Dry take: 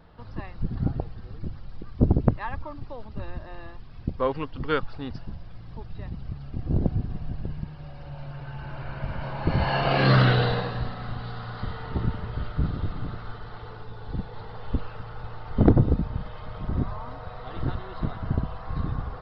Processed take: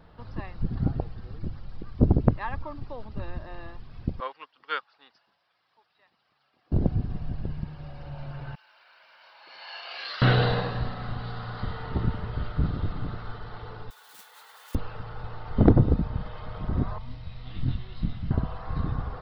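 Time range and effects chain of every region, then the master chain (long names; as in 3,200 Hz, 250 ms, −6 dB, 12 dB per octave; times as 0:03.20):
0:04.20–0:06.72: high-pass filter 990 Hz + expander for the loud parts, over −50 dBFS
0:08.55–0:10.22: high-pass filter 550 Hz + first difference
0:13.90–0:14.75: noise that follows the level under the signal 22 dB + high-pass filter 1,500 Hz
0:16.98–0:18.31: flat-topped bell 750 Hz −15.5 dB 2.6 octaves + double-tracking delay 24 ms −5 dB
whole clip: no processing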